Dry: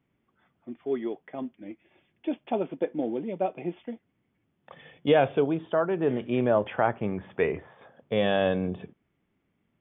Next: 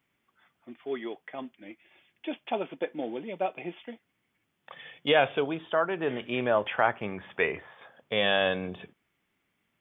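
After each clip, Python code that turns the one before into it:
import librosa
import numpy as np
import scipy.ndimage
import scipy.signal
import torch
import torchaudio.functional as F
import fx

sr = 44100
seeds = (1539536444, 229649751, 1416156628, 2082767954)

y = fx.tilt_shelf(x, sr, db=-8.0, hz=800.0)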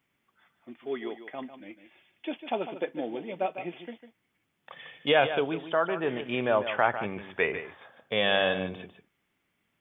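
y = x + 10.0 ** (-11.0 / 20.0) * np.pad(x, (int(150 * sr / 1000.0), 0))[:len(x)]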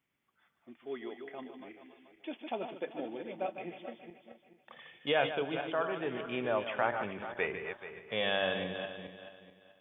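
y = fx.reverse_delay_fb(x, sr, ms=216, feedback_pct=53, wet_db=-8.0)
y = y * librosa.db_to_amplitude(-7.0)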